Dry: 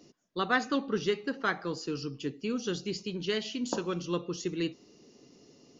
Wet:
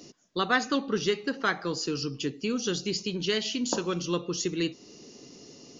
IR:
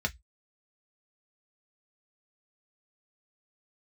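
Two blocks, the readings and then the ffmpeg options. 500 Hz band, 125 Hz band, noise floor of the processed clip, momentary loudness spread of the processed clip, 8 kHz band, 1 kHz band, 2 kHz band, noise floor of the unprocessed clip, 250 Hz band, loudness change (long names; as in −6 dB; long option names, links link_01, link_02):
+2.5 dB, +3.0 dB, −52 dBFS, 22 LU, can't be measured, +2.5 dB, +3.0 dB, −60 dBFS, +3.0 dB, +3.5 dB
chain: -filter_complex "[0:a]asplit=2[link_01][link_02];[link_02]acompressor=threshold=-40dB:ratio=6,volume=2dB[link_03];[link_01][link_03]amix=inputs=2:normalize=0,highshelf=frequency=4100:gain=8,aresample=16000,aresample=44100"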